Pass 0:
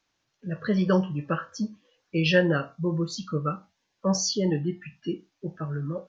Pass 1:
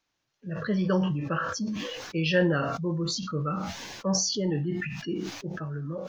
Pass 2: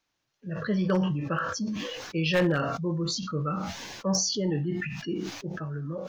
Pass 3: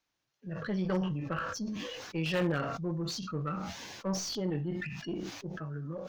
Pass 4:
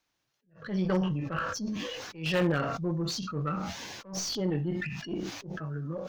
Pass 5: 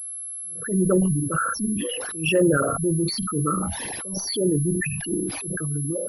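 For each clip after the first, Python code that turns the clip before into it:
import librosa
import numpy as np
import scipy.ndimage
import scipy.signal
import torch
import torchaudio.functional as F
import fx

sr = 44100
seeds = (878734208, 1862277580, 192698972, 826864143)

y1 = fx.sustainer(x, sr, db_per_s=31.0)
y1 = y1 * librosa.db_to_amplitude(-3.5)
y2 = 10.0 ** (-16.0 / 20.0) * (np.abs((y1 / 10.0 ** (-16.0 / 20.0) + 3.0) % 4.0 - 2.0) - 1.0)
y3 = fx.diode_clip(y2, sr, knee_db=-25.5)
y3 = fx.slew_limit(y3, sr, full_power_hz=140.0)
y3 = y3 * librosa.db_to_amplitude(-4.0)
y4 = fx.attack_slew(y3, sr, db_per_s=150.0)
y4 = y4 * librosa.db_to_amplitude(3.5)
y5 = fx.envelope_sharpen(y4, sr, power=3.0)
y5 = fx.pwm(y5, sr, carrier_hz=11000.0)
y5 = y5 * librosa.db_to_amplitude(8.0)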